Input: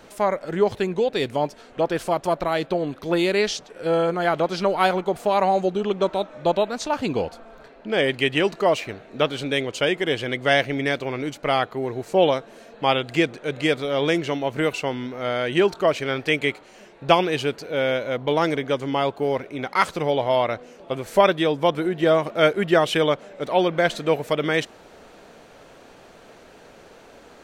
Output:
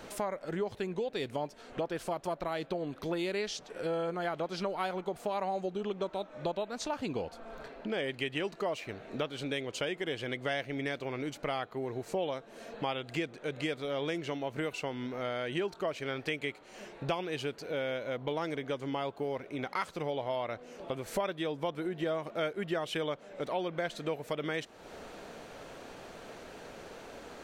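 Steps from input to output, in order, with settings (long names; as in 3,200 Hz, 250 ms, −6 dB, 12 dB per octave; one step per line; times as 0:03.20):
downward compressor 3 to 1, threshold −36 dBFS, peak gain reduction 18.5 dB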